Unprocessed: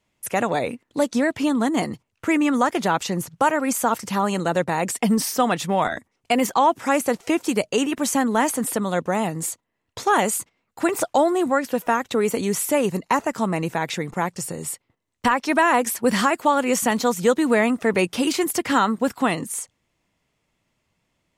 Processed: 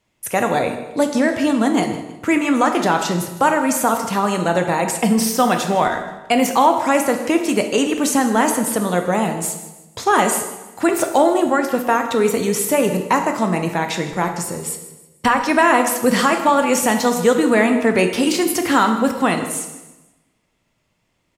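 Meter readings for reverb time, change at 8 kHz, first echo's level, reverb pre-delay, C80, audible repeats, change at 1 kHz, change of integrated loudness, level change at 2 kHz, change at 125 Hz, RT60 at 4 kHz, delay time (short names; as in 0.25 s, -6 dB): 1.0 s, +4.0 dB, -16.0 dB, 13 ms, 9.0 dB, 3, +4.0 dB, +4.0 dB, +4.0 dB, +4.0 dB, 0.95 s, 0.159 s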